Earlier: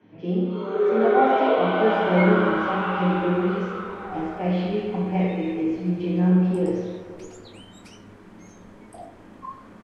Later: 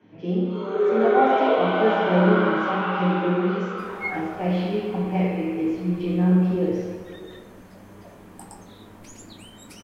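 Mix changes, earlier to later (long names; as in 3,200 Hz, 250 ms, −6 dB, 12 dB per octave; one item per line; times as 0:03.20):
second sound: entry +1.85 s
master: remove high-frequency loss of the air 60 metres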